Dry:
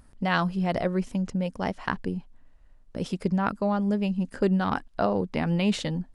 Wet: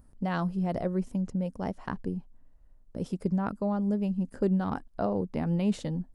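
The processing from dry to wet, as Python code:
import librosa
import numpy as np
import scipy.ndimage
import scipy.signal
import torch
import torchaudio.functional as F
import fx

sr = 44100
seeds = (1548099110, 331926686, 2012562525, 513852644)

y = fx.peak_eq(x, sr, hz=2800.0, db=-11.5, octaves=2.8)
y = F.gain(torch.from_numpy(y), -2.0).numpy()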